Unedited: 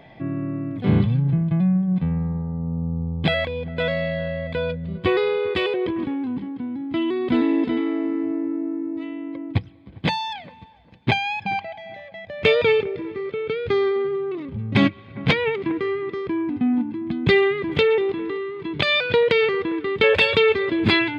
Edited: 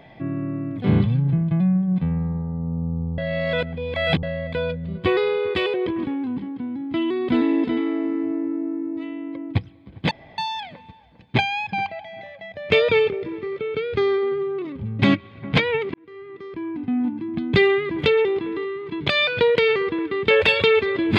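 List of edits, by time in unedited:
3.18–4.23 reverse
10.11 insert room tone 0.27 s
15.67–17 fade in

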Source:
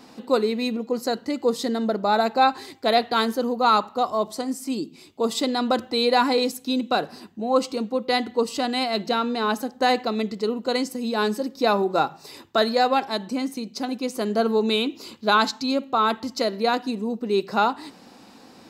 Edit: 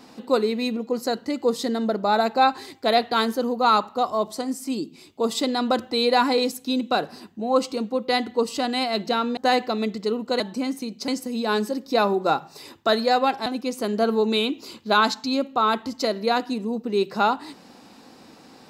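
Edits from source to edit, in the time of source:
9.37–9.74 cut
13.15–13.83 move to 10.77

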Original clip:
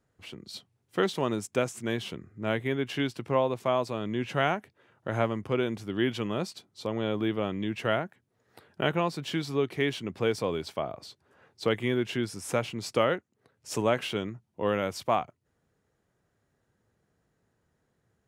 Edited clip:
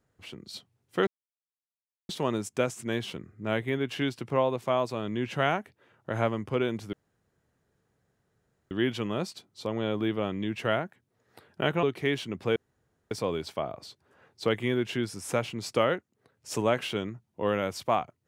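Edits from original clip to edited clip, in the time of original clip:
1.07 insert silence 1.02 s
5.91 insert room tone 1.78 s
9.03–9.58 cut
10.31 insert room tone 0.55 s

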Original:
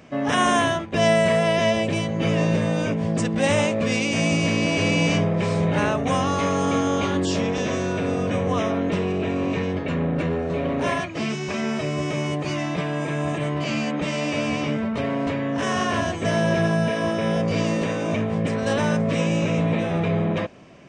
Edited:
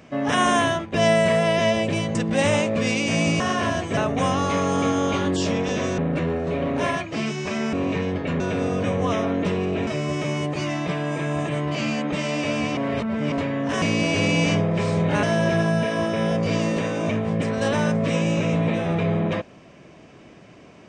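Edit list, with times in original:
2.15–3.2 cut
4.45–5.86 swap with 15.71–16.28
7.87–9.34 swap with 10.01–11.76
14.66–15.21 reverse

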